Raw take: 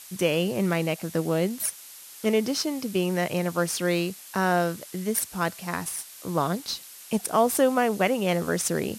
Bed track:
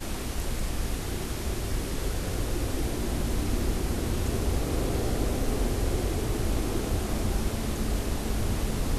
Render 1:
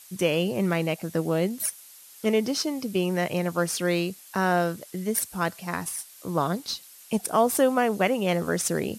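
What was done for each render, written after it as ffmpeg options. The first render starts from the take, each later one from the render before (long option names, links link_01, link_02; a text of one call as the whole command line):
ffmpeg -i in.wav -af "afftdn=noise_reduction=6:noise_floor=-46" out.wav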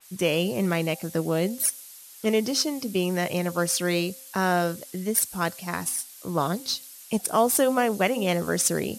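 ffmpeg -i in.wav -af "bandreject=frequency=263.4:width_type=h:width=4,bandreject=frequency=526.8:width_type=h:width=4,bandreject=frequency=790.2:width_type=h:width=4,adynamicequalizer=threshold=0.0112:dfrequency=3300:dqfactor=0.7:tfrequency=3300:tqfactor=0.7:attack=5:release=100:ratio=0.375:range=2.5:mode=boostabove:tftype=highshelf" out.wav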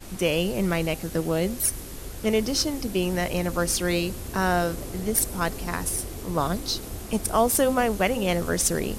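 ffmpeg -i in.wav -i bed.wav -filter_complex "[1:a]volume=-8dB[link_01];[0:a][link_01]amix=inputs=2:normalize=0" out.wav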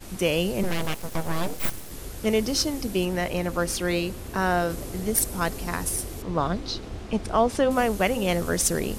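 ffmpeg -i in.wav -filter_complex "[0:a]asettb=1/sr,asplit=3[link_01][link_02][link_03];[link_01]atrim=end=0.634[link_04];[link_02]atrim=start=0.63:end=1.91,asetpts=PTS-STARTPTS,afade=type=in:duration=0.004:curve=qsin,afade=type=out:start_time=1.276:duration=0.004:curve=qsin,aeval=exprs='abs(val(0))':channel_layout=same[link_05];[link_03]atrim=start=1.906[link_06];[link_04][link_05]acrossfade=duration=0.004:curve1=hsin:curve2=qsin[link_07];[link_07][link_06]acrossfade=duration=0.004:curve1=qsin:curve2=hsin,asettb=1/sr,asplit=3[link_08][link_09][link_10];[link_08]atrim=end=3.054[link_11];[link_09]atrim=start=3.05:end=4.7,asetpts=PTS-STARTPTS,afade=type=in:duration=0.004:curve=qsin,afade=type=out:start_time=1.646:duration=0.004:curve=qsin,bass=frequency=250:gain=-2,treble=frequency=4000:gain=-5[link_12];[link_10]atrim=start=4.696[link_13];[link_11][link_12]acrossfade=duration=0.004:curve1=hsin:curve2=qsin[link_14];[link_14][link_13]acrossfade=duration=0.004:curve1=qsin:curve2=hsin,asettb=1/sr,asplit=3[link_15][link_16][link_17];[link_15]atrim=end=6.224[link_18];[link_16]atrim=start=6.22:end=7.71,asetpts=PTS-STARTPTS,afade=type=in:duration=0.004:curve=qsin,afade=type=out:start_time=1.486:duration=0.004:curve=qsin,lowpass=4000[link_19];[link_17]atrim=start=7.706[link_20];[link_18][link_19]acrossfade=duration=0.004:curve1=hsin:curve2=qsin[link_21];[link_21][link_20]acrossfade=duration=0.004:curve1=qsin:curve2=hsin" out.wav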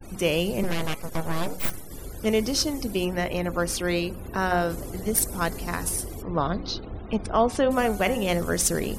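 ffmpeg -i in.wav -af "bandreject=frequency=183.7:width_type=h:width=4,bandreject=frequency=367.4:width_type=h:width=4,bandreject=frequency=551.1:width_type=h:width=4,bandreject=frequency=734.8:width_type=h:width=4,bandreject=frequency=918.5:width_type=h:width=4,bandreject=frequency=1102.2:width_type=h:width=4,bandreject=frequency=1285.9:width_type=h:width=4,bandreject=frequency=1469.6:width_type=h:width=4,bandreject=frequency=1653.3:width_type=h:width=4,bandreject=frequency=1837:width_type=h:width=4,bandreject=frequency=2020.7:width_type=h:width=4,bandreject=frequency=2204.4:width_type=h:width=4,bandreject=frequency=2388.1:width_type=h:width=4,afftfilt=real='re*gte(hypot(re,im),0.00631)':imag='im*gte(hypot(re,im),0.00631)':win_size=1024:overlap=0.75" out.wav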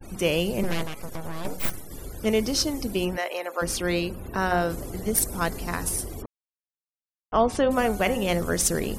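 ffmpeg -i in.wav -filter_complex "[0:a]asettb=1/sr,asplit=3[link_01][link_02][link_03];[link_01]atrim=end=0.834[link_04];[link_02]atrim=start=0.83:end=1.45,asetpts=PTS-STARTPTS,afade=type=in:duration=0.004:curve=qsin,afade=type=out:start_time=0.616:duration=0.004:curve=qsin,acompressor=threshold=-27dB:ratio=6:attack=3.2:release=140:knee=1:detection=peak[link_05];[link_03]atrim=start=1.446[link_06];[link_04][link_05]acrossfade=duration=0.004:curve1=hsin:curve2=qsin[link_07];[link_07][link_06]acrossfade=duration=0.004:curve1=qsin:curve2=hsin,asplit=3[link_08][link_09][link_10];[link_08]afade=type=out:start_time=3.16:duration=0.02[link_11];[link_09]highpass=frequency=450:width=0.5412,highpass=frequency=450:width=1.3066,afade=type=in:start_time=3.16:duration=0.02,afade=type=out:start_time=3.61:duration=0.02[link_12];[link_10]afade=type=in:start_time=3.61:duration=0.02[link_13];[link_11][link_12][link_13]amix=inputs=3:normalize=0,asplit=3[link_14][link_15][link_16];[link_14]atrim=end=6.26,asetpts=PTS-STARTPTS,afade=type=out:start_time=6.256:duration=0.004:curve=hsin[link_17];[link_15]atrim=start=6.26:end=7.32,asetpts=PTS-STARTPTS,volume=0[link_18];[link_16]atrim=start=7.32,asetpts=PTS-STARTPTS,afade=type=in:duration=0.004:curve=hsin[link_19];[link_17][link_18][link_19]concat=n=3:v=0:a=1" out.wav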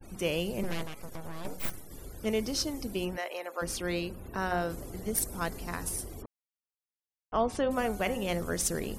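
ffmpeg -i in.wav -af "volume=-7dB" out.wav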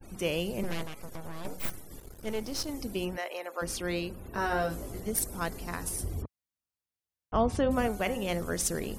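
ffmpeg -i in.wav -filter_complex "[0:a]asettb=1/sr,asplit=3[link_01][link_02][link_03];[link_01]atrim=end=2.004[link_04];[link_02]atrim=start=2:end=2.69,asetpts=PTS-STARTPTS,afade=type=in:duration=0.004:curve=qsin,afade=type=out:start_time=0.686:duration=0.004:curve=qsin,aeval=exprs='if(lt(val(0),0),0.251*val(0),val(0))':channel_layout=same[link_05];[link_03]atrim=start=2.686[link_06];[link_04][link_05]acrossfade=duration=0.004:curve1=hsin:curve2=qsin[link_07];[link_07][link_06]acrossfade=duration=0.004:curve1=qsin:curve2=hsin,asettb=1/sr,asplit=3[link_08][link_09][link_10];[link_08]atrim=end=4.324[link_11];[link_09]atrim=start=4.32:end=5,asetpts=PTS-STARTPTS,afade=type=in:duration=0.004:curve=qsin,afade=type=out:start_time=0.676:duration=0.004:curve=qsin,asplit=2[link_12][link_13];[link_13]adelay=19,volume=-2.5dB[link_14];[link_12][link_14]amix=inputs=2:normalize=0,atrim=end_sample=29988[link_15];[link_10]atrim=start=4.996[link_16];[link_11][link_15]acrossfade=duration=0.004:curve1=hsin:curve2=qsin[link_17];[link_17][link_16]acrossfade=duration=0.004:curve1=qsin:curve2=hsin,asettb=1/sr,asplit=3[link_18][link_19][link_20];[link_18]atrim=end=6.004[link_21];[link_19]atrim=start=6:end=7.88,asetpts=PTS-STARTPTS,afade=type=in:duration=0.004:curve=qsin,afade=type=out:start_time=1.876:duration=0.004:curve=qsin,equalizer=frequency=82:width=0.56:gain=12.5[link_22];[link_20]atrim=start=7.876[link_23];[link_21][link_22]acrossfade=duration=0.004:curve1=hsin:curve2=qsin[link_24];[link_24][link_23]acrossfade=duration=0.004:curve1=qsin:curve2=hsin" out.wav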